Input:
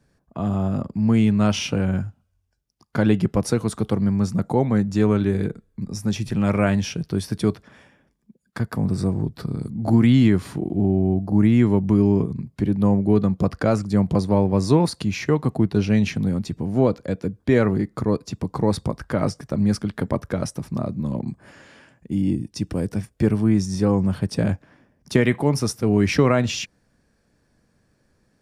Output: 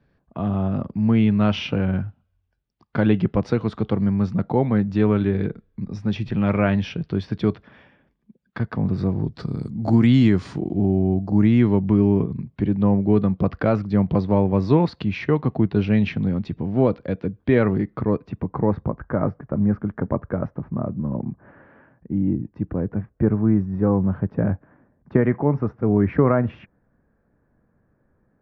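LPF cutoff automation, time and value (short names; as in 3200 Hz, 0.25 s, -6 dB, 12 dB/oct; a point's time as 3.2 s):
LPF 24 dB/oct
9 s 3700 Hz
9.51 s 6400 Hz
11.34 s 6400 Hz
11.9 s 3500 Hz
17.74 s 3500 Hz
18.95 s 1600 Hz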